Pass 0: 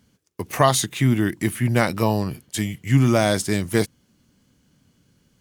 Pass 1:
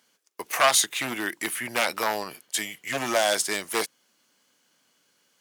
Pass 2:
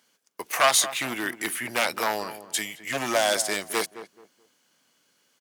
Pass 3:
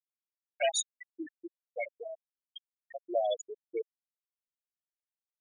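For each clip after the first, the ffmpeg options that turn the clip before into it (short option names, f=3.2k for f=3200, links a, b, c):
-af "aeval=exprs='0.282*(abs(mod(val(0)/0.282+3,4)-2)-1)':c=same,highpass=660,volume=2dB"
-filter_complex "[0:a]asplit=2[a][b];[b]adelay=215,lowpass=f=1.1k:p=1,volume=-11.5dB,asplit=2[c][d];[d]adelay=215,lowpass=f=1.1k:p=1,volume=0.28,asplit=2[e][f];[f]adelay=215,lowpass=f=1.1k:p=1,volume=0.28[g];[a][c][e][g]amix=inputs=4:normalize=0"
-af "asuperstop=centerf=1100:order=4:qfactor=1.4,afftfilt=real='re*gte(hypot(re,im),0.251)':imag='im*gte(hypot(re,im),0.251)':win_size=1024:overlap=0.75,volume=-3.5dB"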